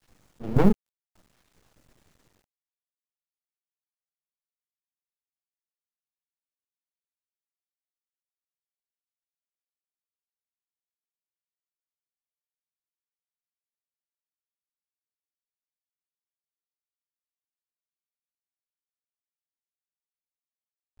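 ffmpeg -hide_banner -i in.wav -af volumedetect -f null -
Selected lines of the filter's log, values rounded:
mean_volume: -36.4 dB
max_volume: -5.7 dB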